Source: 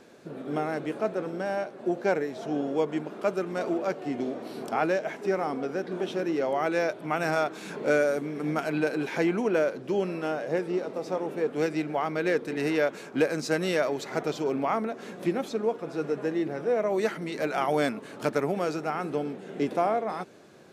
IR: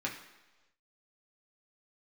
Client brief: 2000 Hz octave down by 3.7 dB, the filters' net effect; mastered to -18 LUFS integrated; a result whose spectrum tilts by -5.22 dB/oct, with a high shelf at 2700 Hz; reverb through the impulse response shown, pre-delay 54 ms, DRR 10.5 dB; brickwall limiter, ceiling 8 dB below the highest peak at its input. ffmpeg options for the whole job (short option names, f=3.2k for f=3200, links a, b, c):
-filter_complex "[0:a]equalizer=f=2k:t=o:g=-6.5,highshelf=f=2.7k:g=3,alimiter=limit=-20.5dB:level=0:latency=1,asplit=2[a][b];[1:a]atrim=start_sample=2205,adelay=54[c];[b][c]afir=irnorm=-1:irlink=0,volume=-14.5dB[d];[a][d]amix=inputs=2:normalize=0,volume=13dB"